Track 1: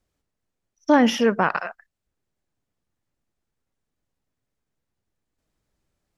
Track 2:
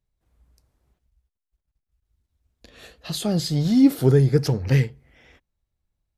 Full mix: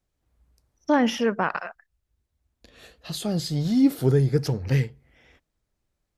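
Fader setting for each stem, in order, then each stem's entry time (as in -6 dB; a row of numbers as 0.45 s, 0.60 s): -4.0 dB, -3.5 dB; 0.00 s, 0.00 s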